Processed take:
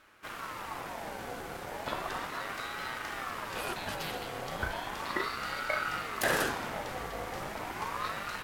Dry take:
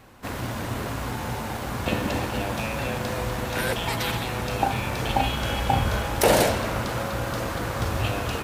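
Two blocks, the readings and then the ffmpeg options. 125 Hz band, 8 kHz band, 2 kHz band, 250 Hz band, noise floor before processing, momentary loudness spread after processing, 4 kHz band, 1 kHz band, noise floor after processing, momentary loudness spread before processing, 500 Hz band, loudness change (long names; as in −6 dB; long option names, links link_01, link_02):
−19.5 dB, −10.5 dB, −5.0 dB, −14.0 dB, −32 dBFS, 9 LU, −9.5 dB, −8.0 dB, −42 dBFS, 8 LU, −12.0 dB, −9.5 dB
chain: -af "aeval=exprs='(mod(2*val(0)+1,2)-1)/2':channel_layout=same,aeval=exprs='val(0)*sin(2*PI*1000*n/s+1000*0.4/0.35*sin(2*PI*0.35*n/s))':channel_layout=same,volume=-7.5dB"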